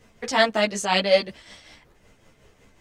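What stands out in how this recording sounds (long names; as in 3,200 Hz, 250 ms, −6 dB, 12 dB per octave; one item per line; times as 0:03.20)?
tremolo triangle 5.4 Hz, depth 55%
a shimmering, thickened sound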